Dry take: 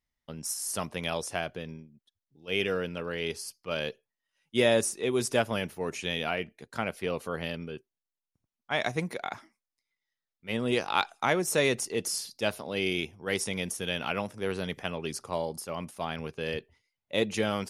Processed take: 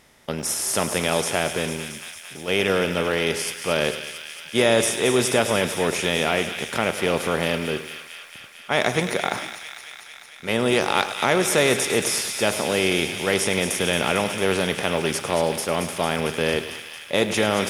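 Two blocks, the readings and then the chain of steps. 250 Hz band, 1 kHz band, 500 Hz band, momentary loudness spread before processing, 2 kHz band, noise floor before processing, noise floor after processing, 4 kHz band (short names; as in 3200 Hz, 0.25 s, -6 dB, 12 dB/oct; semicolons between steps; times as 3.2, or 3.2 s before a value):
+8.0 dB, +8.5 dB, +8.5 dB, 11 LU, +9.5 dB, under -85 dBFS, -43 dBFS, +9.5 dB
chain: per-bin compression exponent 0.6; thin delay 0.225 s, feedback 76%, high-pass 2000 Hz, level -8 dB; in parallel at -2.5 dB: limiter -14.5 dBFS, peak gain reduction 7.5 dB; on the sum: lo-fi delay 0.103 s, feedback 55%, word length 7-bit, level -13 dB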